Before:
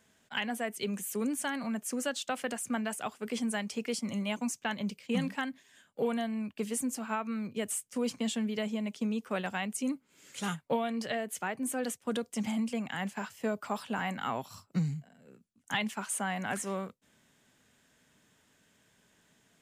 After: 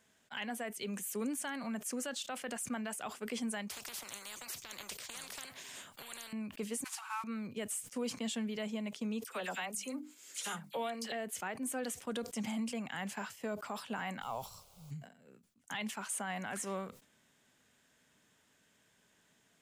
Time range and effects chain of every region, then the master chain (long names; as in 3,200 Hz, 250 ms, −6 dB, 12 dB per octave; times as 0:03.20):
0:03.70–0:06.33: downward compressor 2.5 to 1, threshold −34 dBFS + every bin compressed towards the loudest bin 10 to 1
0:06.84–0:07.24: variable-slope delta modulation 64 kbit/s + Chebyshev high-pass filter 810 Hz, order 6 + comb filter 5.4 ms, depth 32%
0:09.24–0:11.12: bass and treble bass −9 dB, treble +7 dB + mains-hum notches 50/100/150/200/250/300 Hz + all-pass dispersion lows, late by 48 ms, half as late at 1,700 Hz
0:14.21–0:14.90: volume swells 466 ms + background noise pink −56 dBFS + phaser with its sweep stopped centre 740 Hz, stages 4
whole clip: low-shelf EQ 320 Hz −4 dB; brickwall limiter −26.5 dBFS; level that may fall only so fast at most 130 dB per second; level −2.5 dB